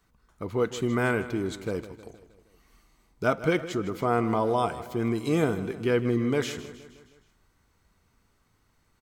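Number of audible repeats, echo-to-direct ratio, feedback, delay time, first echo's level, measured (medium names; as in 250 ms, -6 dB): 4, -13.0 dB, 55%, 157 ms, -14.5 dB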